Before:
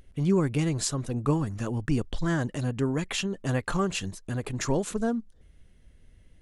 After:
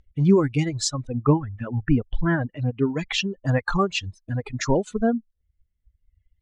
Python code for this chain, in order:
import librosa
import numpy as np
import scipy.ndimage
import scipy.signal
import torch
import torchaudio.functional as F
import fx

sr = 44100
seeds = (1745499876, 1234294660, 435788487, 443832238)

y = fx.bin_expand(x, sr, power=1.5)
y = fx.dereverb_blind(y, sr, rt60_s=1.6)
y = fx.lowpass(y, sr, hz=fx.steps((0.0, 6800.0), (1.07, 2700.0), (2.9, 5900.0)), slope=24)
y = y * librosa.db_to_amplitude(8.5)